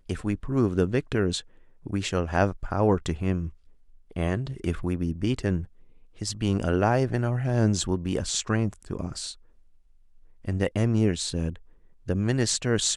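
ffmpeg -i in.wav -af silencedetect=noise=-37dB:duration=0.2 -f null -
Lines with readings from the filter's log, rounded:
silence_start: 1.40
silence_end: 1.86 | silence_duration: 0.46
silence_start: 3.49
silence_end: 4.11 | silence_duration: 0.62
silence_start: 5.65
silence_end: 6.21 | silence_duration: 0.56
silence_start: 9.33
silence_end: 10.45 | silence_duration: 1.12
silence_start: 11.56
silence_end: 12.08 | silence_duration: 0.52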